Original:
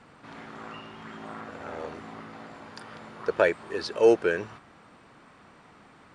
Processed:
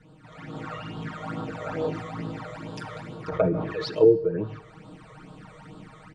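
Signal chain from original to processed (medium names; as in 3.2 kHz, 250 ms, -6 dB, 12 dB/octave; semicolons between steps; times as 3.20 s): low-pass that closes with the level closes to 310 Hz, closed at -18.5 dBFS; bass shelf 330 Hz +8.5 dB; comb 6.4 ms, depth 95%; level rider gain up to 10 dB; phase shifter stages 12, 2.3 Hz, lowest notch 260–2100 Hz; feedback comb 460 Hz, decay 0.42 s, mix 50%; plate-style reverb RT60 1 s, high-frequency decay 0.95×, DRR 17.5 dB; 1.90–4.07 s: decay stretcher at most 52 dB/s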